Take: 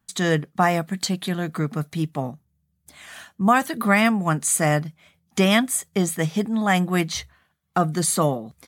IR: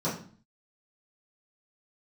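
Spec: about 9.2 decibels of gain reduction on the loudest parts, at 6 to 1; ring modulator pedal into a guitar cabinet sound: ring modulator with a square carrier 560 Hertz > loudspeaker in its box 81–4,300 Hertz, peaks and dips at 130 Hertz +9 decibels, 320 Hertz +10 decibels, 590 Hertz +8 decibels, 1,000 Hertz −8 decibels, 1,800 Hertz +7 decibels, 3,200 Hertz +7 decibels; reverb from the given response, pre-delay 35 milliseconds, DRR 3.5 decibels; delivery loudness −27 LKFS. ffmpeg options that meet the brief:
-filter_complex "[0:a]acompressor=threshold=-23dB:ratio=6,asplit=2[link_01][link_02];[1:a]atrim=start_sample=2205,adelay=35[link_03];[link_02][link_03]afir=irnorm=-1:irlink=0,volume=-12.5dB[link_04];[link_01][link_04]amix=inputs=2:normalize=0,aeval=exprs='val(0)*sgn(sin(2*PI*560*n/s))':channel_layout=same,highpass=81,equalizer=frequency=130:width_type=q:width=4:gain=9,equalizer=frequency=320:width_type=q:width=4:gain=10,equalizer=frequency=590:width_type=q:width=4:gain=8,equalizer=frequency=1000:width_type=q:width=4:gain=-8,equalizer=frequency=1800:width_type=q:width=4:gain=7,equalizer=frequency=3200:width_type=q:width=4:gain=7,lowpass=frequency=4300:width=0.5412,lowpass=frequency=4300:width=1.3066,volume=-8.5dB"

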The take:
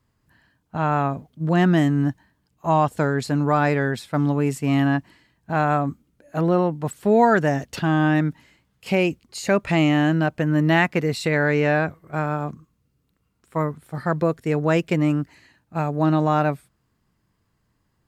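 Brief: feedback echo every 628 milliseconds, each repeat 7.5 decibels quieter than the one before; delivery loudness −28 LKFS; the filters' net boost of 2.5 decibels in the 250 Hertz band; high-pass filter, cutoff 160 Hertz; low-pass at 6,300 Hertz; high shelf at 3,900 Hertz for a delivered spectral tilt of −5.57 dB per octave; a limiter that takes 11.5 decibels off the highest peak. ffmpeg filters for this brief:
ffmpeg -i in.wav -af "highpass=160,lowpass=6300,equalizer=frequency=250:width_type=o:gain=4.5,highshelf=frequency=3900:gain=7.5,alimiter=limit=-16dB:level=0:latency=1,aecho=1:1:628|1256|1884|2512|3140:0.422|0.177|0.0744|0.0312|0.0131,volume=-2dB" out.wav

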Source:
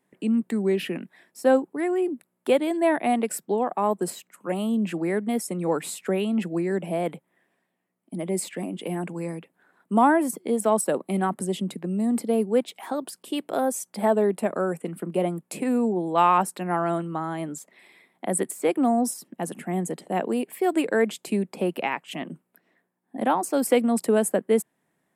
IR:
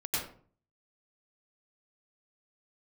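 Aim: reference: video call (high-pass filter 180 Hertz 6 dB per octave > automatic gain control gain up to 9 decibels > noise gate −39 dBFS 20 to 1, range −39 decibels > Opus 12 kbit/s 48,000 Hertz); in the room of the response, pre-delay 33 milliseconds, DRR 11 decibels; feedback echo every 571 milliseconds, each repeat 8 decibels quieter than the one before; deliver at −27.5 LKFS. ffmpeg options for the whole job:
-filter_complex "[0:a]aecho=1:1:571|1142|1713|2284|2855:0.398|0.159|0.0637|0.0255|0.0102,asplit=2[link_01][link_02];[1:a]atrim=start_sample=2205,adelay=33[link_03];[link_02][link_03]afir=irnorm=-1:irlink=0,volume=-17dB[link_04];[link_01][link_04]amix=inputs=2:normalize=0,highpass=frequency=180:poles=1,dynaudnorm=maxgain=9dB,agate=range=-39dB:threshold=-39dB:ratio=20,volume=-4.5dB" -ar 48000 -c:a libopus -b:a 12k

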